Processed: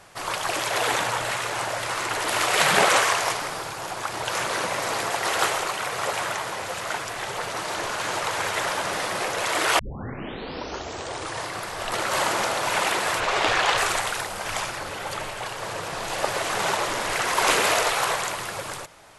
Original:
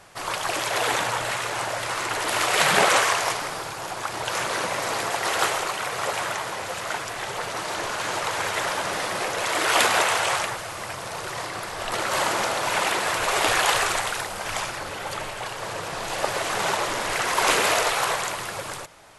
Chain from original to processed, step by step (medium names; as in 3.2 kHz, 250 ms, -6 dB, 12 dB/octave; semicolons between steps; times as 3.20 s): 9.79 s: tape start 1.69 s; 13.20–13.78 s: low-pass 5.4 kHz 12 dB/octave